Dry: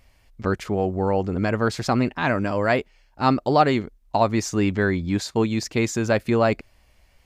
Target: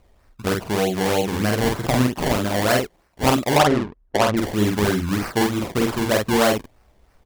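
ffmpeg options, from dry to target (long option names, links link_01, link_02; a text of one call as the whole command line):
ffmpeg -i in.wav -filter_complex "[0:a]acrusher=samples=24:mix=1:aa=0.000001:lfo=1:lforange=24:lforate=3.2,asettb=1/sr,asplit=3[link_01][link_02][link_03];[link_01]atrim=end=3.574[link_04];[link_02]atrim=start=3.57:end=4.37,asetpts=PTS-STARTPTS,afade=type=in:duration=0.004:curve=qsin,afade=type=out:start_time=0.796:duration=0.004:curve=qsin,adynamicsmooth=sensitivity=1:basefreq=1300[link_05];[link_03]atrim=start=4.366[link_06];[link_04][link_05]acrossfade=duration=0.004:curve1=hsin:curve2=qsin[link_07];[link_07][link_06]acrossfade=duration=0.004:curve1=qsin:curve2=hsin,asplit=2[link_08][link_09];[link_09]aecho=0:1:15|48:0.188|0.708[link_10];[link_08][link_10]amix=inputs=2:normalize=0" out.wav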